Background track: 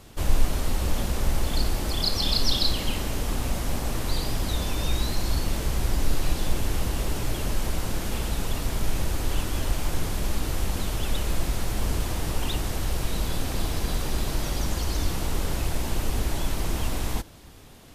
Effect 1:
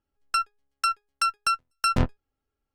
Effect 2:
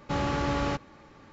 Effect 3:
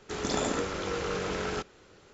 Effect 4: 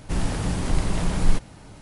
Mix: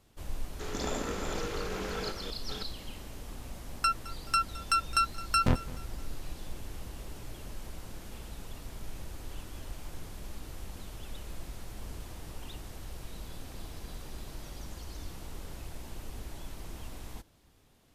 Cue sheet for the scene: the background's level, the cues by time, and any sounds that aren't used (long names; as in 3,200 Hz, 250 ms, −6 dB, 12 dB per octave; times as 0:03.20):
background track −16 dB
0:00.50: mix in 3 −5.5 dB + delay that plays each chunk backwards 601 ms, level −5 dB
0:03.50: mix in 1 −3 dB + repeating echo 214 ms, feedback 41%, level −19 dB
not used: 2, 4